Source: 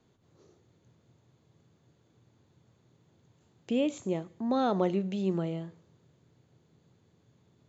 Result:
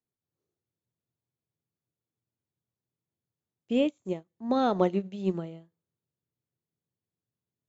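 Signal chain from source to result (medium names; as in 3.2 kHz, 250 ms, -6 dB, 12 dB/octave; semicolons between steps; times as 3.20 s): upward expansion 2.5:1, over -46 dBFS; trim +5.5 dB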